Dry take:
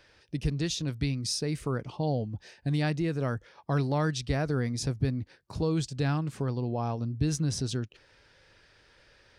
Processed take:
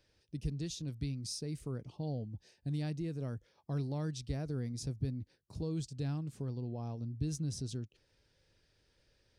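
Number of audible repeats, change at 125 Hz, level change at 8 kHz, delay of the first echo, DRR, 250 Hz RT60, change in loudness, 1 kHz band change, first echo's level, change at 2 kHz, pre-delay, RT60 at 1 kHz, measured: no echo audible, −7.5 dB, −9.0 dB, no echo audible, no reverb audible, no reverb audible, −9.0 dB, −16.0 dB, no echo audible, −18.0 dB, no reverb audible, no reverb audible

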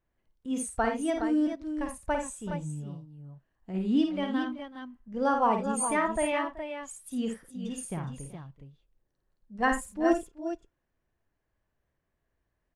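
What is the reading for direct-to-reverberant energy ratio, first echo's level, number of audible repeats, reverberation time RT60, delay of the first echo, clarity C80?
no reverb audible, −5.5 dB, 4, no reverb audible, 53 ms, no reverb audible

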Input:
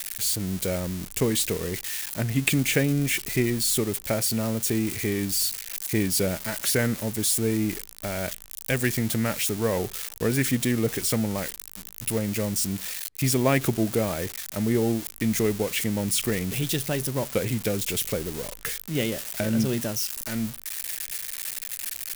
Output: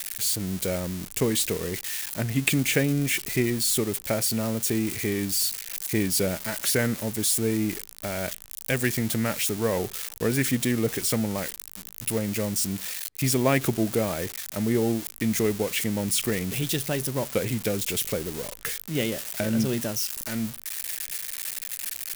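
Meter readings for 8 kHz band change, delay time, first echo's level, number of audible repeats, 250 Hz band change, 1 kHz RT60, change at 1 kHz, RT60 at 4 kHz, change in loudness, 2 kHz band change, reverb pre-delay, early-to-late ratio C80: 0.0 dB, no echo audible, no echo audible, no echo audible, −0.5 dB, no reverb audible, 0.0 dB, no reverb audible, −0.5 dB, 0.0 dB, no reverb audible, no reverb audible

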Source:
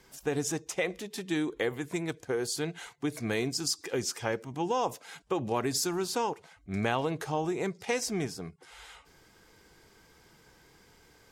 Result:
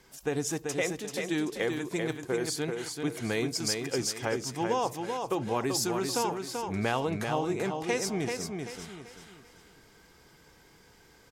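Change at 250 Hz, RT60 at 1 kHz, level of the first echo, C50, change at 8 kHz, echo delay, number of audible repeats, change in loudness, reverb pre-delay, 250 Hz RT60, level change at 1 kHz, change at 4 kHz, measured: +1.5 dB, no reverb audible, −5.0 dB, no reverb audible, +1.5 dB, 386 ms, 4, +1.0 dB, no reverb audible, no reverb audible, +1.5 dB, +1.5 dB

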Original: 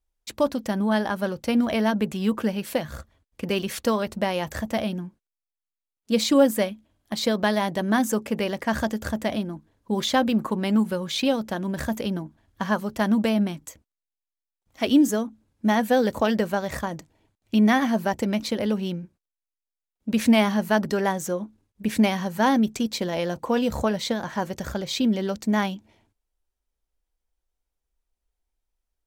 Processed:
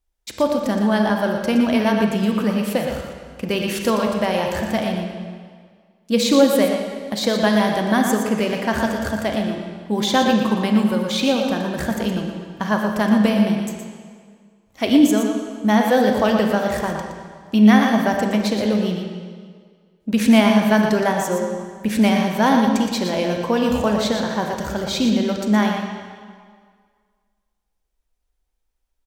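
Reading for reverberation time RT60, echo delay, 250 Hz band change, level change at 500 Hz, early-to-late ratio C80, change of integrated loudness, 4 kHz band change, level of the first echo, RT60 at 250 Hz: 1.9 s, 118 ms, +5.5 dB, +5.5 dB, 3.0 dB, +5.5 dB, +5.0 dB, −7.0 dB, 1.8 s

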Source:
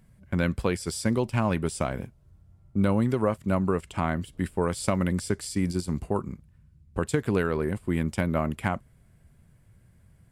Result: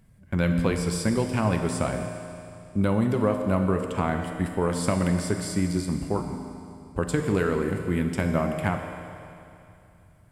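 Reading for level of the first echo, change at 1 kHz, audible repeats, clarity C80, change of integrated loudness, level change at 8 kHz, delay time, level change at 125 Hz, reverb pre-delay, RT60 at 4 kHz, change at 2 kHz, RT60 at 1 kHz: no echo audible, +1.5 dB, no echo audible, 6.0 dB, +1.5 dB, +1.5 dB, no echo audible, +2.0 dB, 7 ms, 2.7 s, +1.5 dB, 2.7 s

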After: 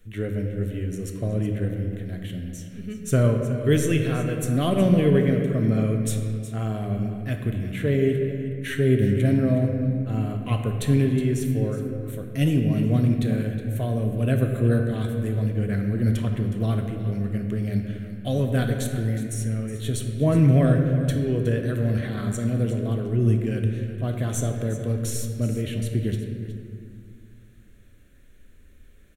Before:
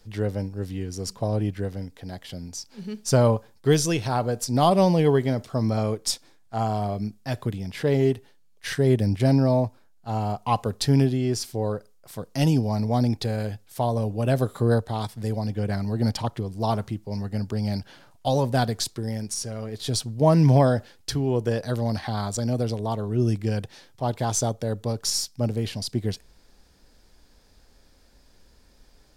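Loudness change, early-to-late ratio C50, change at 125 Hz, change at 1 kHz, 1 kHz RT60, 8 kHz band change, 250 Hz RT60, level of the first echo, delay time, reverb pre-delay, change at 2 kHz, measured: +1.0 dB, 4.5 dB, +3.0 dB, −10.0 dB, 1.8 s, −4.5 dB, 2.8 s, −14.5 dB, 366 ms, 3 ms, +1.5 dB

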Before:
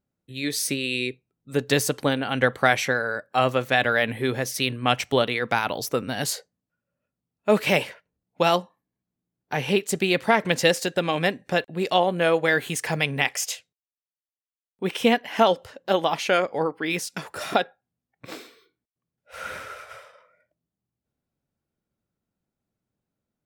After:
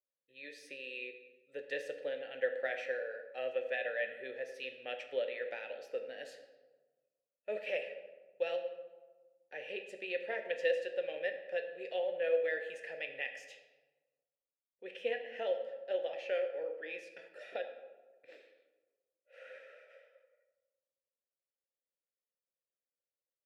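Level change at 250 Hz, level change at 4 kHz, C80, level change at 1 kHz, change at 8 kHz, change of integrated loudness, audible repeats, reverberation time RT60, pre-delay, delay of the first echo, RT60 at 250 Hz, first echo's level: −29.0 dB, −21.5 dB, 10.0 dB, −25.0 dB, below −30 dB, −15.0 dB, no echo audible, 1.3 s, 7 ms, no echo audible, 1.5 s, no echo audible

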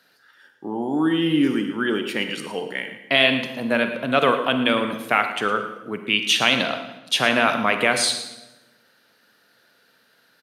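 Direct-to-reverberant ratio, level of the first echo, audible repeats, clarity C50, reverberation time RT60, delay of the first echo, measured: 6.5 dB, −13.0 dB, 1, 7.5 dB, 1.1 s, 112 ms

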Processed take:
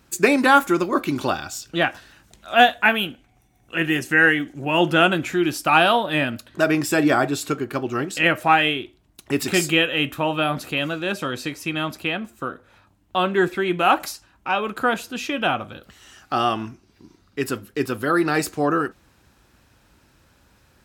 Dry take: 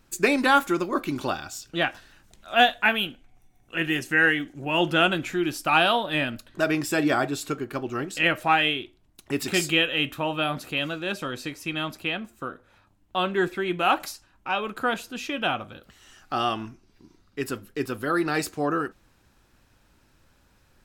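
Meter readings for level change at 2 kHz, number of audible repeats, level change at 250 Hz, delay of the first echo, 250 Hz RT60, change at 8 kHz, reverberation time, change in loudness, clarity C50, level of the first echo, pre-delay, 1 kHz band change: +4.0 dB, no echo audible, +5.0 dB, no echo audible, no reverb audible, +4.5 dB, no reverb audible, +4.0 dB, no reverb audible, no echo audible, no reverb audible, +5.0 dB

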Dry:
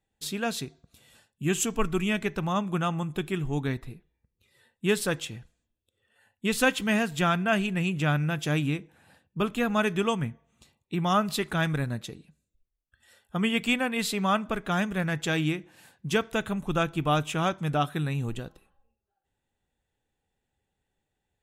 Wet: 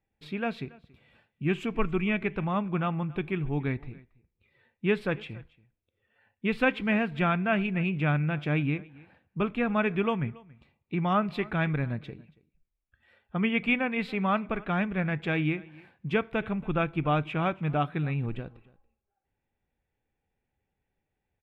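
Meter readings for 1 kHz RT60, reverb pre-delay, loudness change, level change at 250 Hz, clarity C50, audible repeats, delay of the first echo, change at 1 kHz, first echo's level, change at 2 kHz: no reverb audible, no reverb audible, −1.0 dB, −0.5 dB, no reverb audible, 1, 280 ms, −2.0 dB, −23.0 dB, −1.0 dB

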